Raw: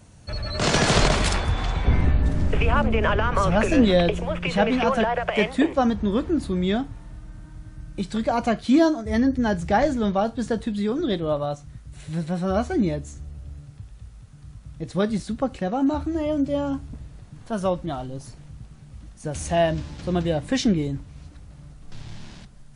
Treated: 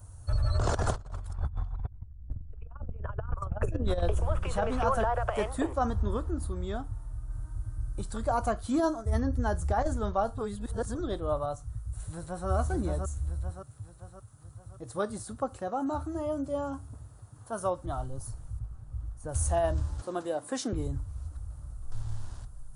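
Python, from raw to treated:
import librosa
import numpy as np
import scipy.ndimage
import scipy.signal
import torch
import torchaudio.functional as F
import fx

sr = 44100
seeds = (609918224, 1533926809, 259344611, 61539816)

y = fx.envelope_sharpen(x, sr, power=1.5, at=(0.57, 3.87), fade=0.02)
y = fx.echo_throw(y, sr, start_s=11.81, length_s=0.67, ms=570, feedback_pct=50, wet_db=-3.0)
y = fx.highpass(y, sr, hz=140.0, slope=12, at=(13.5, 17.85))
y = fx.high_shelf(y, sr, hz=4200.0, db=-11.5, at=(18.59, 19.29))
y = fx.highpass(y, sr, hz=210.0, slope=24, at=(20.01, 20.73))
y = fx.edit(y, sr, fx.clip_gain(start_s=6.17, length_s=1.13, db=-3.0),
    fx.reverse_span(start_s=10.38, length_s=0.57), tone=tone)
y = fx.curve_eq(y, sr, hz=(110.0, 160.0, 320.0, 1300.0, 2200.0, 5600.0, 10000.0), db=(0, -22, -15, -7, -24, -14, 0))
y = fx.over_compress(y, sr, threshold_db=-29.0, ratio=-0.5)
y = y * 10.0 ** (1.5 / 20.0)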